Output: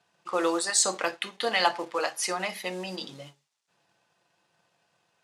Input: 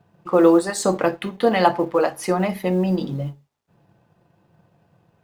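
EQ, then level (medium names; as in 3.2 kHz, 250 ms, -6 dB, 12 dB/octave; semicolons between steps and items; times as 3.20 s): frequency weighting ITU-R 468; -6.0 dB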